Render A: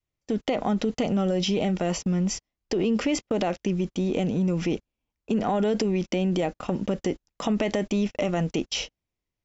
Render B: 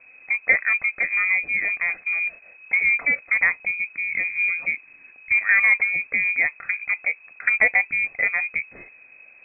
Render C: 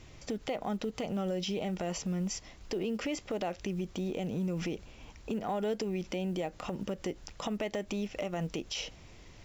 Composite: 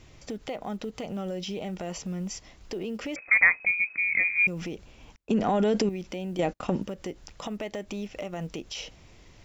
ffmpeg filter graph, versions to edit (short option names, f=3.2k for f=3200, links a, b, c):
-filter_complex "[0:a]asplit=2[a][b];[2:a]asplit=4[c][d][e][f];[c]atrim=end=3.162[g];[1:a]atrim=start=3.158:end=4.472[h];[d]atrim=start=4.468:end=5.162[i];[a]atrim=start=5.158:end=5.892[j];[e]atrim=start=5.888:end=6.392[k];[b]atrim=start=6.388:end=6.822[l];[f]atrim=start=6.818[m];[g][h]acrossfade=d=0.004:c1=hsin:c2=hsin[n];[n][i]acrossfade=d=0.004:c1=hsin:c2=hsin[o];[o][j]acrossfade=d=0.004:c1=hsin:c2=hsin[p];[p][k]acrossfade=d=0.004:c1=hsin:c2=hsin[q];[q][l]acrossfade=d=0.004:c1=hsin:c2=hsin[r];[r][m]acrossfade=d=0.004:c1=hsin:c2=hsin"